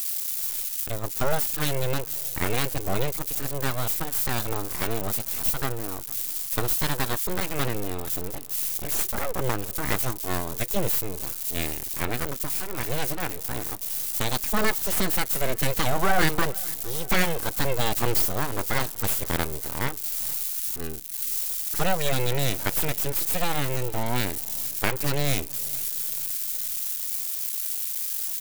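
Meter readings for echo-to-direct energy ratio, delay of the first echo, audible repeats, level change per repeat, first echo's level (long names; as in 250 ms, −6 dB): −21.0 dB, 455 ms, 3, −5.5 dB, −22.5 dB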